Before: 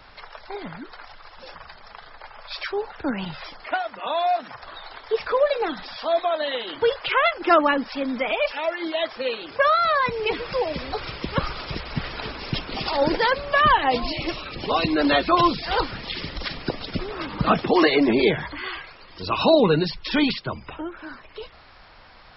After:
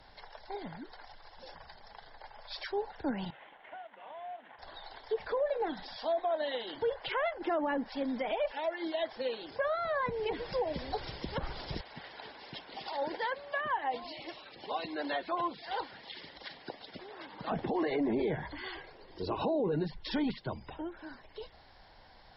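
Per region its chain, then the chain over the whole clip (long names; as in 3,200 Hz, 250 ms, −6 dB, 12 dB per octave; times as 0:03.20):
0:03.30–0:04.59: variable-slope delta modulation 16 kbit/s + high-pass filter 730 Hz 6 dB per octave + downward compressor 2.5 to 1, threshold −40 dBFS
0:11.81–0:17.52: high-pass filter 990 Hz 6 dB per octave + high-frequency loss of the air 210 metres
0:18.74–0:19.72: low-pass filter 3,200 Hz 6 dB per octave + parametric band 400 Hz +9.5 dB 0.8 octaves
whole clip: treble cut that deepens with the level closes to 2,000 Hz, closed at −18.5 dBFS; thirty-one-band graphic EQ 800 Hz +4 dB, 1,250 Hz −12 dB, 2,500 Hz −9 dB; brickwall limiter −16.5 dBFS; level −7.5 dB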